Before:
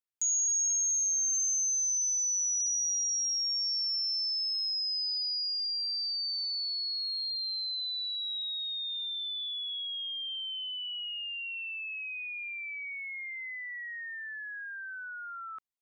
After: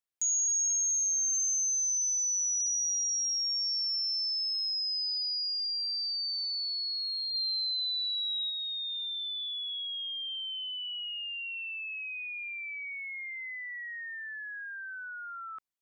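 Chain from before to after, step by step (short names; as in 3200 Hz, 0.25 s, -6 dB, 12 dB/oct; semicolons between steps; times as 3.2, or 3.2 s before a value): 7.34–8.5 bell 6700 Hz +7.5 dB 1.1 oct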